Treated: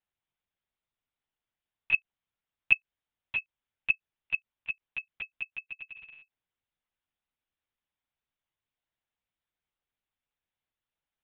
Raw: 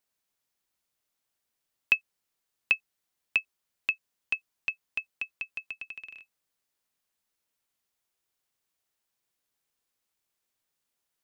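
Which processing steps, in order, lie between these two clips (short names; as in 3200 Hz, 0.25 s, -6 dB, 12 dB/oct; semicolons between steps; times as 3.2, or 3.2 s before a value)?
monotone LPC vocoder at 8 kHz 150 Hz; gain -4.5 dB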